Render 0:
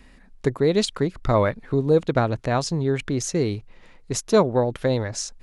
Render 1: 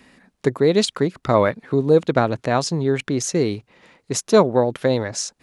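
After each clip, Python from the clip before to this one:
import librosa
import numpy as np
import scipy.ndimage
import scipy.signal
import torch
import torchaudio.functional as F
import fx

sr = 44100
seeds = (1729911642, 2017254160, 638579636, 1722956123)

y = scipy.signal.sosfilt(scipy.signal.butter(2, 140.0, 'highpass', fs=sr, output='sos'), x)
y = y * librosa.db_to_amplitude(3.5)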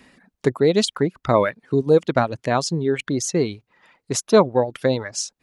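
y = fx.dereverb_blind(x, sr, rt60_s=1.0)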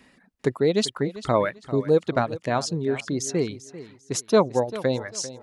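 y = fx.echo_feedback(x, sr, ms=394, feedback_pct=27, wet_db=-15.5)
y = y * librosa.db_to_amplitude(-4.0)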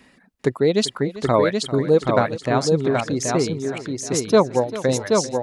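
y = fx.echo_feedback(x, sr, ms=777, feedback_pct=19, wet_db=-4.0)
y = y * librosa.db_to_amplitude(3.0)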